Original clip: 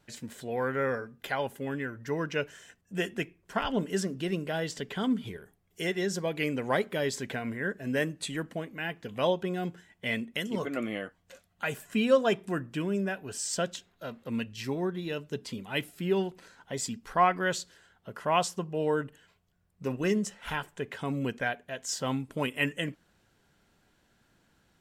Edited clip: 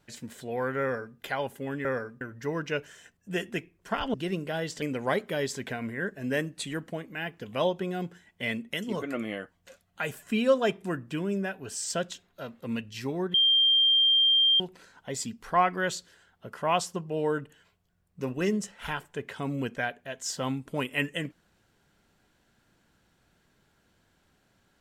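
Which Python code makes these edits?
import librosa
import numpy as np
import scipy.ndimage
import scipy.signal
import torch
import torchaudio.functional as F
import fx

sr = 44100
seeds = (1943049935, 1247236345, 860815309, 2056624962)

y = fx.edit(x, sr, fx.duplicate(start_s=0.82, length_s=0.36, to_s=1.85),
    fx.cut(start_s=3.78, length_s=0.36),
    fx.cut(start_s=4.82, length_s=1.63),
    fx.bleep(start_s=14.97, length_s=1.26, hz=3180.0, db=-18.5), tone=tone)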